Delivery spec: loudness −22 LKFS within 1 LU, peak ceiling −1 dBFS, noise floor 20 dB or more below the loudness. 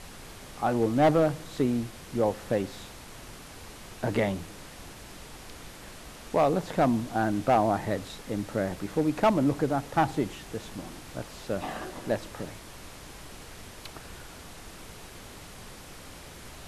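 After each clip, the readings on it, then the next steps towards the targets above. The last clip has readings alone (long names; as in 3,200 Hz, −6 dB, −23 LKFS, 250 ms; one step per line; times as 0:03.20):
share of clipped samples 0.4%; peaks flattened at −15.5 dBFS; background noise floor −46 dBFS; target noise floor −49 dBFS; integrated loudness −28.5 LKFS; sample peak −15.5 dBFS; target loudness −22.0 LKFS
→ clipped peaks rebuilt −15.5 dBFS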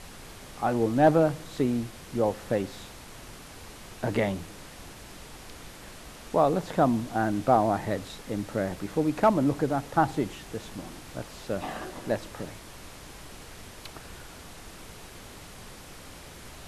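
share of clipped samples 0.0%; background noise floor −46 dBFS; target noise floor −48 dBFS
→ noise reduction from a noise print 6 dB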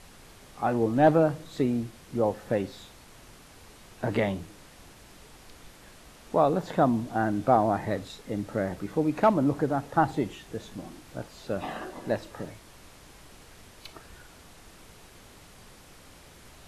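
background noise floor −52 dBFS; integrated loudness −27.5 LKFS; sample peak −8.0 dBFS; target loudness −22.0 LKFS
→ level +5.5 dB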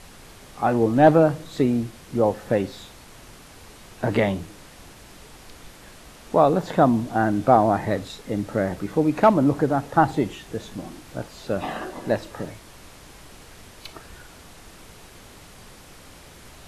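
integrated loudness −22.0 LKFS; sample peak −2.5 dBFS; background noise floor −47 dBFS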